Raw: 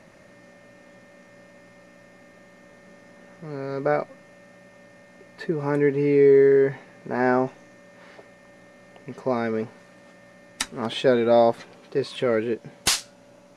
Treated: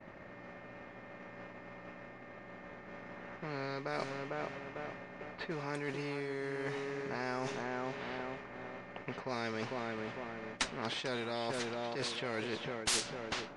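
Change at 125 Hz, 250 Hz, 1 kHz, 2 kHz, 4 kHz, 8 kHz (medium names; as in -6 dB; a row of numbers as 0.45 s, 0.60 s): -11.5 dB, -14.5 dB, -10.5 dB, -7.0 dB, -7.5 dB, no reading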